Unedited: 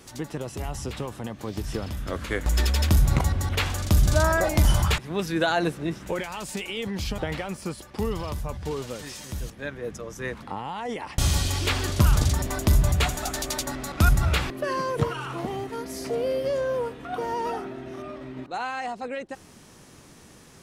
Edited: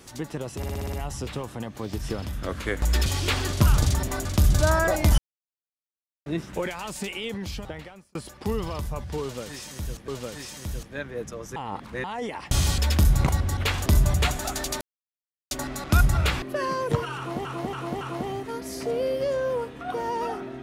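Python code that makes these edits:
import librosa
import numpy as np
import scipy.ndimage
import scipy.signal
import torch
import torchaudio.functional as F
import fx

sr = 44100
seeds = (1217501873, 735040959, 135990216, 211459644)

y = fx.edit(x, sr, fx.stutter(start_s=0.57, slice_s=0.06, count=7),
    fx.swap(start_s=2.7, length_s=1.08, other_s=11.45, other_length_s=1.19),
    fx.silence(start_s=4.71, length_s=1.08),
    fx.fade_out_span(start_s=6.67, length_s=1.01),
    fx.repeat(start_s=8.75, length_s=0.86, count=2),
    fx.reverse_span(start_s=10.23, length_s=0.48),
    fx.insert_silence(at_s=13.59, length_s=0.7),
    fx.repeat(start_s=15.25, length_s=0.28, count=4), tone=tone)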